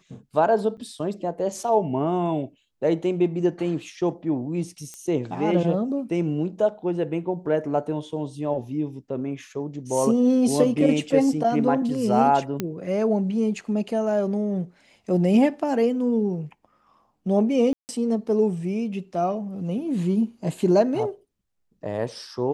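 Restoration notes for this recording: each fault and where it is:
0:00.77–0:00.78: drop-out 7.9 ms
0:04.94: click −22 dBFS
0:12.60: click −12 dBFS
0:17.73–0:17.89: drop-out 159 ms

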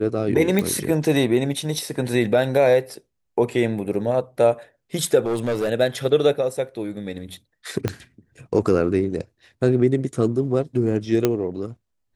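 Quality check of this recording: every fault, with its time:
0:00.59: click −8 dBFS
0:05.26–0:05.69: clipping −19 dBFS
0:07.88: click −9 dBFS
0:11.25: click −5 dBFS

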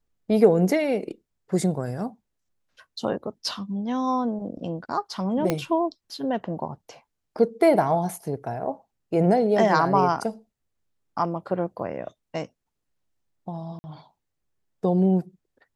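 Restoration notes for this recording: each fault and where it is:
0:05.50: click −9 dBFS
0:13.79–0:13.84: drop-out 50 ms

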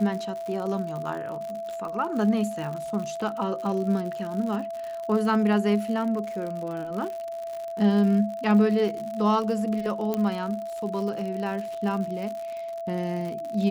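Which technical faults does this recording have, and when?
surface crackle 81 per second −32 dBFS
whistle 670 Hz −31 dBFS
0:10.14: click −14 dBFS

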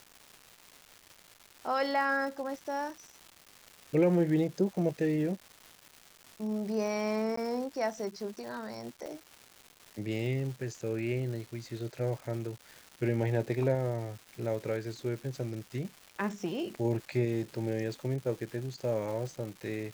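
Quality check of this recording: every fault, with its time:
surface crackle 520 per second −41 dBFS
0:07.36–0:07.37: drop-out 14 ms
0:09.06: click

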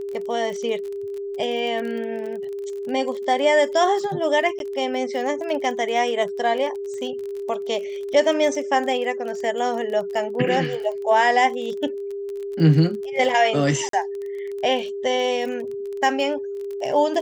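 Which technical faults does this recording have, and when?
surface crackle 27 per second −30 dBFS
whistle 400 Hz −27 dBFS
0:04.59–0:04.60: drop-out
0:13.89–0:13.93: drop-out 43 ms

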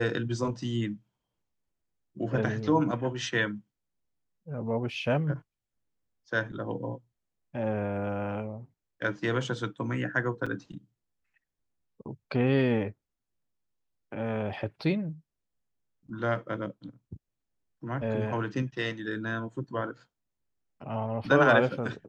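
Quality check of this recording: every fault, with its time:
0:10.46–0:10.47: drop-out 5.1 ms

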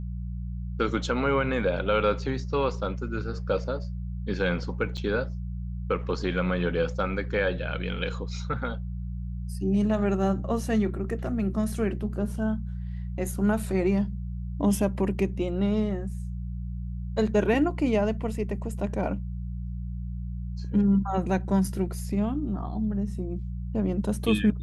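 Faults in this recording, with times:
mains hum 60 Hz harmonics 3 −33 dBFS
0:04.97–0:04.98: drop-out 5.7 ms

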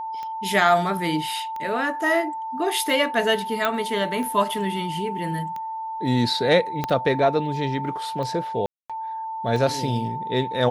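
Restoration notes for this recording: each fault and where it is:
scratch tick 45 rpm −21 dBFS
whistle 890 Hz −28 dBFS
0:03.65: click −9 dBFS
0:06.84: click −10 dBFS
0:08.66–0:08.90: drop-out 236 ms

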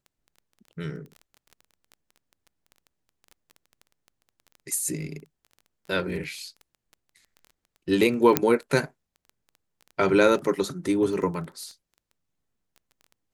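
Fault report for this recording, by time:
surface crackle 11 per second −35 dBFS
0:08.37: click −2 dBFS

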